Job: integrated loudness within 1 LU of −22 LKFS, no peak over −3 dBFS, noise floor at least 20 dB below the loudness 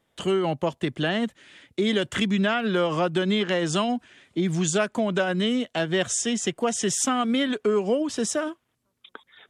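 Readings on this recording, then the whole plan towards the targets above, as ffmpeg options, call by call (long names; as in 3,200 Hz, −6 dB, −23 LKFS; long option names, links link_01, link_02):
integrated loudness −25.0 LKFS; sample peak −11.5 dBFS; target loudness −22.0 LKFS
→ -af "volume=3dB"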